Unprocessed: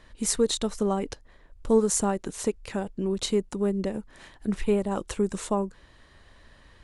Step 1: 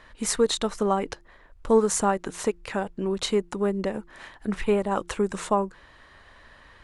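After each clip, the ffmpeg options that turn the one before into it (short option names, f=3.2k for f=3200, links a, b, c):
-af "equalizer=f=1.3k:w=0.45:g=9.5,bandreject=f=173.1:t=h:w=4,bandreject=f=346.2:t=h:w=4,volume=-2dB"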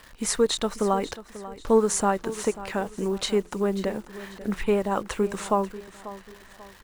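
-af "acrusher=bits=9:dc=4:mix=0:aa=0.000001,aecho=1:1:540|1080|1620:0.168|0.0621|0.023"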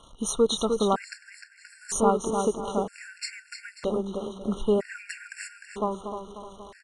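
-filter_complex "[0:a]aresample=22050,aresample=44100,asplit=2[a][b];[b]adelay=304,lowpass=f=4.7k:p=1,volume=-5.5dB,asplit=2[c][d];[d]adelay=304,lowpass=f=4.7k:p=1,volume=0.36,asplit=2[e][f];[f]adelay=304,lowpass=f=4.7k:p=1,volume=0.36,asplit=2[g][h];[h]adelay=304,lowpass=f=4.7k:p=1,volume=0.36[i];[a][c][e][g][i]amix=inputs=5:normalize=0,afftfilt=real='re*gt(sin(2*PI*0.52*pts/sr)*(1-2*mod(floor(b*sr/1024/1400),2)),0)':imag='im*gt(sin(2*PI*0.52*pts/sr)*(1-2*mod(floor(b*sr/1024/1400),2)),0)':win_size=1024:overlap=0.75"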